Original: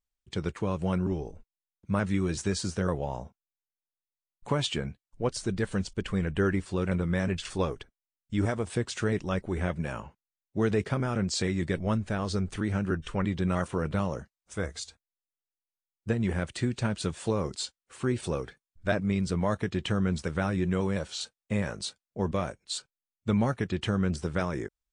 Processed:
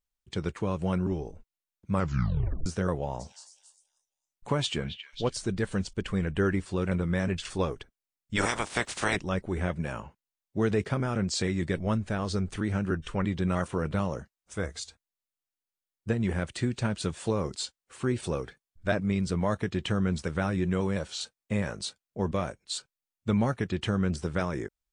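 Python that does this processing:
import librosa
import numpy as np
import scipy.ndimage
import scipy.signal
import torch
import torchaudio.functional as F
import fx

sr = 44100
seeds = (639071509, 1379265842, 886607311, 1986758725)

y = fx.echo_stepped(x, sr, ms=272, hz=2500.0, octaves=0.7, feedback_pct=70, wet_db=-7, at=(3.19, 5.35), fade=0.02)
y = fx.spec_clip(y, sr, under_db=27, at=(8.35, 9.15), fade=0.02)
y = fx.edit(y, sr, fx.tape_stop(start_s=1.93, length_s=0.73), tone=tone)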